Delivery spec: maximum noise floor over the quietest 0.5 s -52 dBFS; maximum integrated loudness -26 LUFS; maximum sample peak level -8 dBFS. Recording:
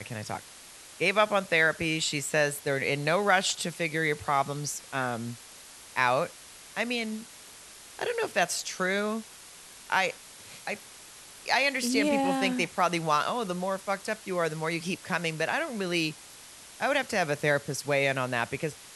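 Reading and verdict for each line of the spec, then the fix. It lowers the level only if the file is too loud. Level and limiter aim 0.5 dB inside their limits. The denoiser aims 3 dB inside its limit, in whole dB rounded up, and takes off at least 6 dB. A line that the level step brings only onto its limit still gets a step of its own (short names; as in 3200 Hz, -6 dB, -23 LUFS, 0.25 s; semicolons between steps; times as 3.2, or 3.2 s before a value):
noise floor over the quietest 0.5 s -49 dBFS: fail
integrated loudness -28.0 LUFS: OK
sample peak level -8.5 dBFS: OK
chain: denoiser 6 dB, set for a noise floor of -49 dBFS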